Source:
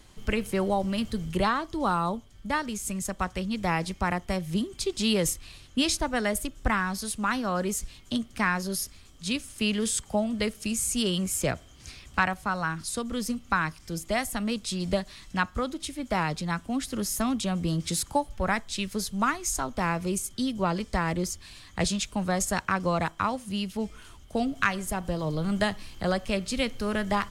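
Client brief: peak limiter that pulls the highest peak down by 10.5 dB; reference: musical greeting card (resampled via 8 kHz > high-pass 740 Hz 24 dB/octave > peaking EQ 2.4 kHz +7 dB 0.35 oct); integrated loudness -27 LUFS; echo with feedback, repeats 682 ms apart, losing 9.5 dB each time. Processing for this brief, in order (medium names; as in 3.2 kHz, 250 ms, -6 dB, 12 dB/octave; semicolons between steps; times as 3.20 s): peak limiter -21.5 dBFS; feedback delay 682 ms, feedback 33%, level -9.5 dB; resampled via 8 kHz; high-pass 740 Hz 24 dB/octave; peaking EQ 2.4 kHz +7 dB 0.35 oct; trim +10 dB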